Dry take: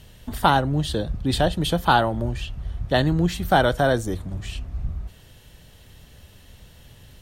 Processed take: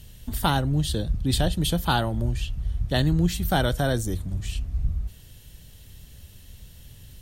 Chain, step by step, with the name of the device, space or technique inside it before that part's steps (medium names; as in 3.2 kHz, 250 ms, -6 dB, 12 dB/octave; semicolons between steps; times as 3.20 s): smiley-face EQ (bass shelf 110 Hz +4 dB; peaking EQ 860 Hz -8 dB 2.9 oct; treble shelf 7.6 kHz +7 dB)